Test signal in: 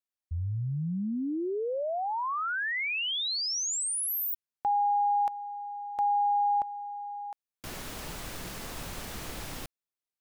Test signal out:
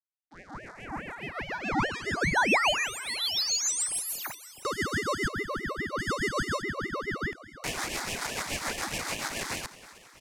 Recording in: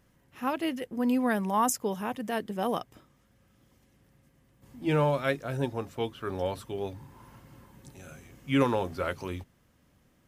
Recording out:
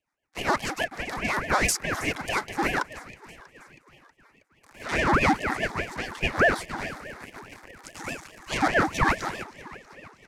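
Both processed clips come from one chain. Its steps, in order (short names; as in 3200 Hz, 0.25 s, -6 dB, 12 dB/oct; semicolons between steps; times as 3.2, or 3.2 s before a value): sample leveller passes 5; rotary speaker horn 7 Hz; sine folder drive 6 dB, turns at -6 dBFS; rippled Chebyshev high-pass 530 Hz, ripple 3 dB; air absorption 54 m; fixed phaser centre 720 Hz, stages 6; on a send: frequency-shifting echo 0.32 s, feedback 63%, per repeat +36 Hz, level -18 dB; on the sum: ring modulator with a swept carrier 730 Hz, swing 70%, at 4.8 Hz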